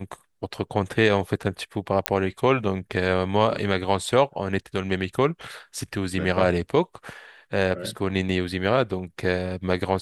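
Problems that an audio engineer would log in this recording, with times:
0:02.06: click −2 dBFS

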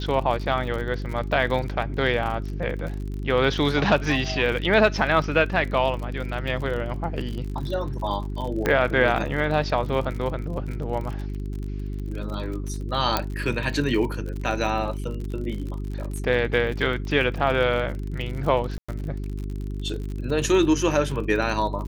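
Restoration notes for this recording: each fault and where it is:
surface crackle 49 per second −31 dBFS
mains hum 50 Hz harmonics 8 −30 dBFS
0:08.66: click −9 dBFS
0:13.17: click −6 dBFS
0:18.78–0:18.89: drop-out 105 ms

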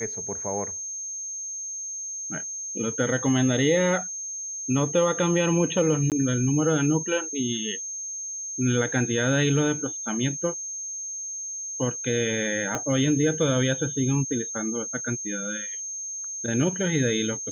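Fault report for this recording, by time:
whistle 6,400 Hz −31 dBFS
0:06.10–0:06.12: drop-out 18 ms
0:12.75: click −13 dBFS

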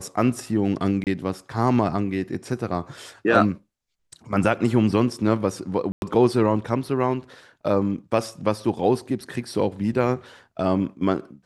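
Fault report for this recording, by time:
0:01.04–0:01.07: drop-out 28 ms
0:05.92–0:06.02: drop-out 101 ms

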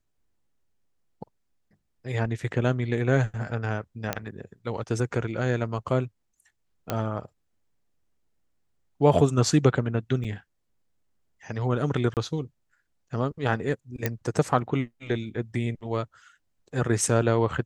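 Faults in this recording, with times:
0:04.13: click −10 dBFS
0:06.90: click −12 dBFS
0:10.24–0:10.25: drop-out 6 ms
0:12.14–0:12.17: drop-out 28 ms
0:14.06: click −10 dBFS

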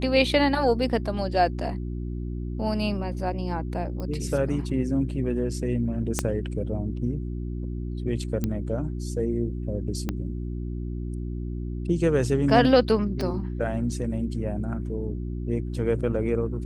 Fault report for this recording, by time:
mains hum 60 Hz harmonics 6 −31 dBFS
0:04.00: click −22 dBFS
0:06.19: click −8 dBFS
0:08.44: click −13 dBFS
0:10.09: click −14 dBFS
0:13.21: click −17 dBFS

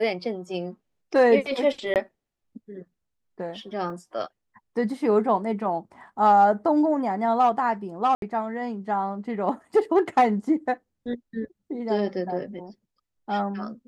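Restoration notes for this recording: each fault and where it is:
0:01.94–0:01.96: drop-out 18 ms
0:03.90: drop-out 2.6 ms
0:08.15–0:08.22: drop-out 72 ms

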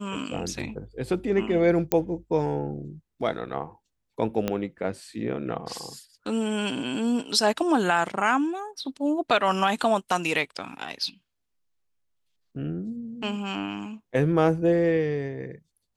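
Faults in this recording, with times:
0:01.92: click −8 dBFS
0:04.48: click −12 dBFS

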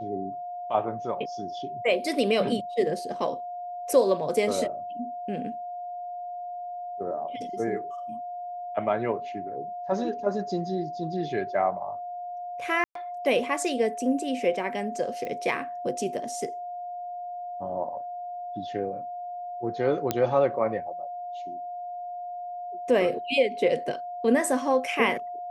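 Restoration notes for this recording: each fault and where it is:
whistle 710 Hz −33 dBFS
0:12.84–0:12.95: drop-out 113 ms
0:15.25: click −23 dBFS
0:20.11: click −9 dBFS

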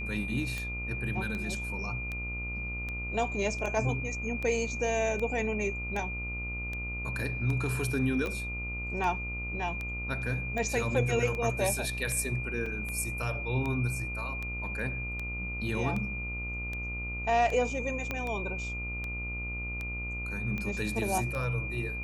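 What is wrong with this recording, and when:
mains buzz 60 Hz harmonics 24 −38 dBFS
scratch tick 78 rpm −23 dBFS
whistle 2,400 Hz −36 dBFS
0:08.26: click −22 dBFS
0:12.66: drop-out 3.7 ms
0:18.11: click −18 dBFS

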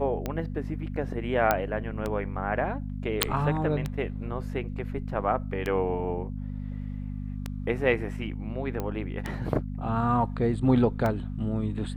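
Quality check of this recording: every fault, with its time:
mains hum 50 Hz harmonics 5 −34 dBFS
scratch tick 33 1/3 rpm −16 dBFS
0:01.51: click −8 dBFS
0:03.23: click −1 dBFS
0:08.80: click −18 dBFS

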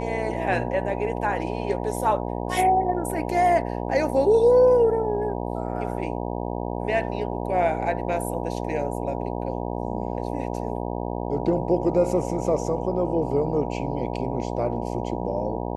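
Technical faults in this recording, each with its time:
mains buzz 60 Hz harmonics 16 −29 dBFS

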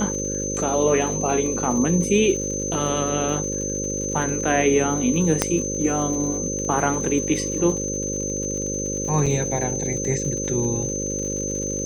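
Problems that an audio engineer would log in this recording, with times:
mains buzz 50 Hz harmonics 11 −29 dBFS
surface crackle 89 per second −31 dBFS
whistle 6,200 Hz −27 dBFS
0:05.42: click −3 dBFS
0:09.26–0:09.27: drop-out 5.4 ms

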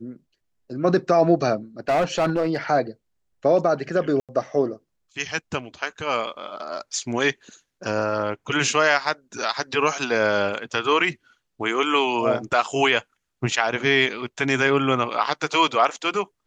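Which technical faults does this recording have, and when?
0:01.88–0:02.57: clipping −16.5 dBFS
0:04.20–0:04.29: drop-out 87 ms
0:15.23: drop-out 3.7 ms

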